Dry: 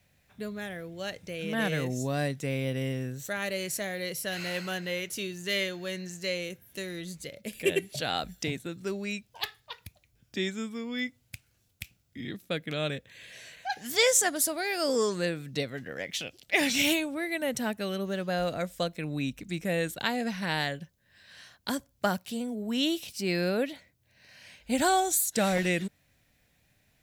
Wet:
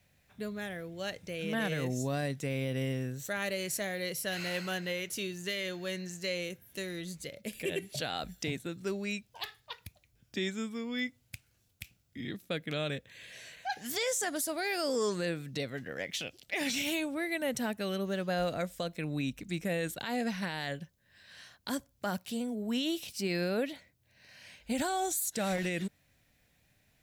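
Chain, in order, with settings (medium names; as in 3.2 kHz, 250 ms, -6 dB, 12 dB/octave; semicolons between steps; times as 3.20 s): peak limiter -22 dBFS, peak gain reduction 11 dB; trim -1.5 dB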